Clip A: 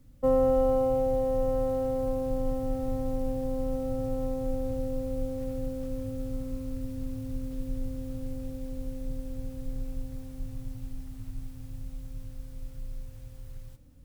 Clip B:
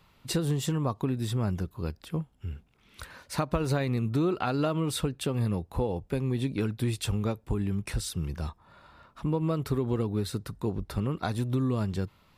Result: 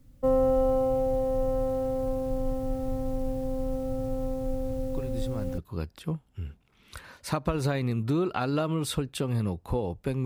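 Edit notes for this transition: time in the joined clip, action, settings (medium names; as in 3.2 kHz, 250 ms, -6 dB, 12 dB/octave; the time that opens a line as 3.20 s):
clip A
4.94 s: add clip B from 1.00 s 0.64 s -7 dB
5.58 s: go over to clip B from 1.64 s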